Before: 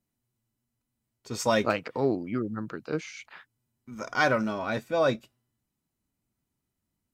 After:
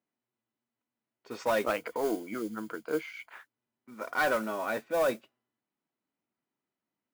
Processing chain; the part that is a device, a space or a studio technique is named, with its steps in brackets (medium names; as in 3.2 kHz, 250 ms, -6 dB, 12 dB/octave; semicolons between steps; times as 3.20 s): carbon microphone (band-pass 330–2600 Hz; saturation -20 dBFS, distortion -14 dB; modulation noise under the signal 19 dB); 1.78–3.34 s: rippled EQ curve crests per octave 1.8, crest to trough 7 dB